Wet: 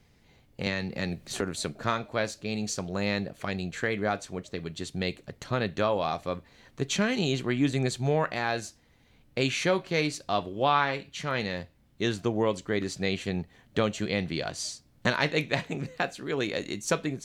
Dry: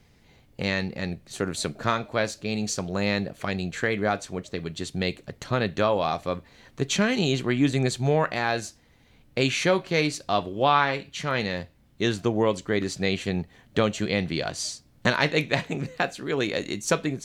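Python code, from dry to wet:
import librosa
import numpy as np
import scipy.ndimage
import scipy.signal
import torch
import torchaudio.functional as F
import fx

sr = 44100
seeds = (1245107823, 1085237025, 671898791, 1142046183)

y = fx.band_squash(x, sr, depth_pct=100, at=(0.66, 1.41))
y = y * librosa.db_to_amplitude(-3.5)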